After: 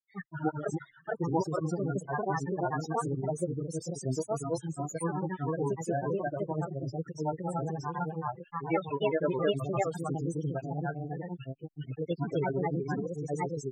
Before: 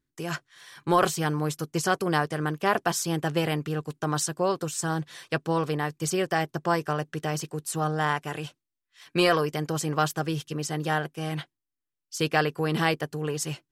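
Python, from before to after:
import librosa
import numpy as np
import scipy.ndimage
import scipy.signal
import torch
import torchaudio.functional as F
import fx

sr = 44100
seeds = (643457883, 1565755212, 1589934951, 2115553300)

y = fx.spec_topn(x, sr, count=8)
y = fx.granulator(y, sr, seeds[0], grain_ms=103.0, per_s=29.0, spray_ms=597.0, spread_st=3)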